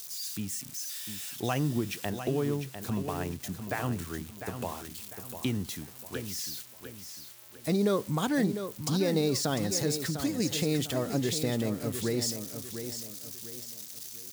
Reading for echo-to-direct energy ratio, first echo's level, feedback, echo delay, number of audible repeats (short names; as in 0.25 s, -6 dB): -8.5 dB, -9.0 dB, 36%, 0.7 s, 3